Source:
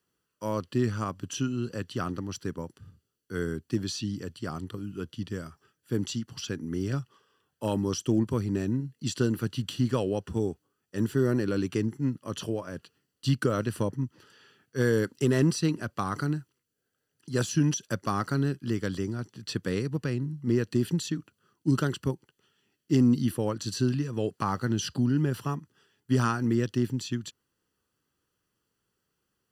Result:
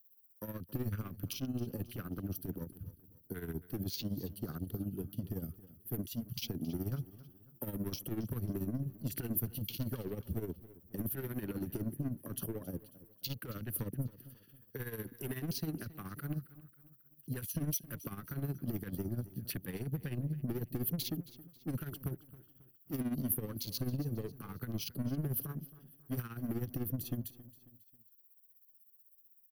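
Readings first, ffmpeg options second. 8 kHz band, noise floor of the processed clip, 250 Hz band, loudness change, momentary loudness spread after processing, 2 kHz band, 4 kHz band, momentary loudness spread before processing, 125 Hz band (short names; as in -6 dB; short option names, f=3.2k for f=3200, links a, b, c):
-8.0 dB, -65 dBFS, -11.5 dB, -10.0 dB, 11 LU, -14.5 dB, -8.5 dB, 11 LU, -9.0 dB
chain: -filter_complex "[0:a]afwtdn=0.0112,highshelf=f=10k:g=6.5,acrossover=split=970[a][b];[a]asoftclip=type=tanh:threshold=-31dB[c];[c][b]amix=inputs=2:normalize=0,acompressor=threshold=-37dB:ratio=6,alimiter=level_in=10dB:limit=-24dB:level=0:latency=1:release=72,volume=-10dB,acrossover=split=320|3000[d][e][f];[e]acompressor=threshold=-46dB:ratio=6[g];[d][g][f]amix=inputs=3:normalize=0,tremolo=f=16:d=0.69,aexciter=amount=15.9:drive=9.1:freq=11k,equalizer=f=920:w=1.1:g=-8.5,aecho=1:1:271|542|813:0.126|0.0529|0.0222,volume=6.5dB"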